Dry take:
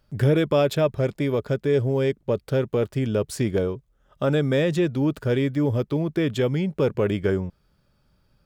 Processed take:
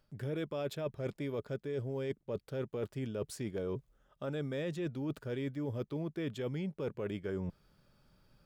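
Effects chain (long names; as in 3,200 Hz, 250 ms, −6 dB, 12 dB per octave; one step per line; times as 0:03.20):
parametric band 62 Hz −7 dB 1.1 octaves
reversed playback
downward compressor 8 to 1, threshold −34 dBFS, peak gain reduction 18 dB
reversed playback
level −1 dB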